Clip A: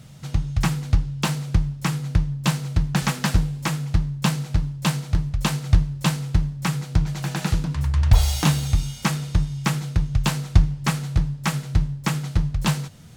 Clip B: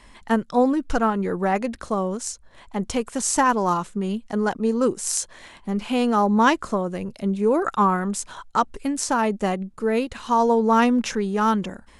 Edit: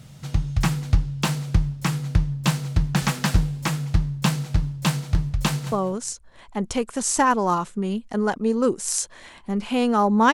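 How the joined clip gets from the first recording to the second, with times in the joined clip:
clip A
5.46–5.72 echo throw 0.2 s, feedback 15%, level -13 dB
5.72 switch to clip B from 1.91 s

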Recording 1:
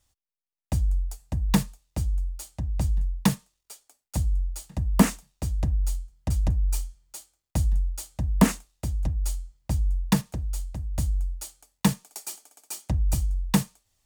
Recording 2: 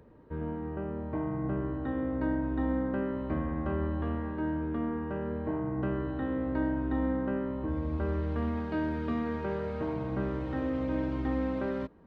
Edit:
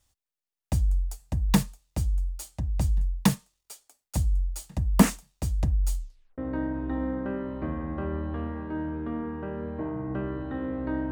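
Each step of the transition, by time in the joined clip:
recording 1
5.98 tape stop 0.40 s
6.38 switch to recording 2 from 2.06 s

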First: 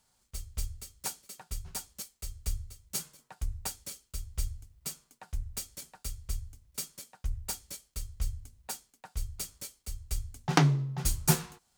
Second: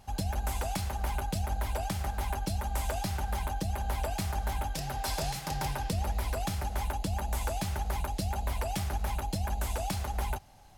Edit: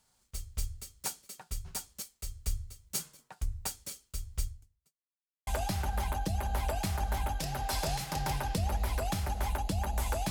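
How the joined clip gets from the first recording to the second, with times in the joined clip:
first
4.38–4.95 fade out quadratic
4.95–5.47 mute
5.47 switch to second from 2.82 s

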